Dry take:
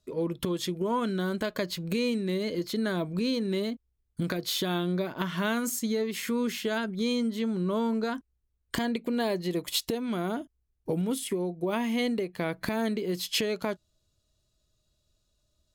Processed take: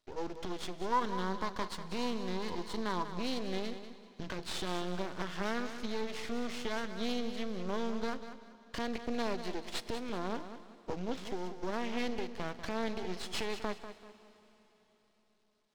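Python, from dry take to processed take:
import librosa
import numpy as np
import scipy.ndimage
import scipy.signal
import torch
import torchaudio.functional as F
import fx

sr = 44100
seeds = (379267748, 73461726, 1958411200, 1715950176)

y = fx.cvsd(x, sr, bps=32000)
y = scipy.signal.sosfilt(scipy.signal.butter(4, 140.0, 'highpass', fs=sr, output='sos'), y)
y = fx.low_shelf(y, sr, hz=190.0, db=-6.5)
y = np.maximum(y, 0.0)
y = fx.graphic_eq_31(y, sr, hz=(630, 1000, 2500), db=(-5, 11, -5), at=(0.92, 3.15))
y = fx.echo_feedback(y, sr, ms=193, feedback_pct=31, wet_db=-11.0)
y = fx.rev_plate(y, sr, seeds[0], rt60_s=4.2, hf_ratio=0.95, predelay_ms=0, drr_db=16.0)
y = F.gain(torch.from_numpy(y), -2.5).numpy()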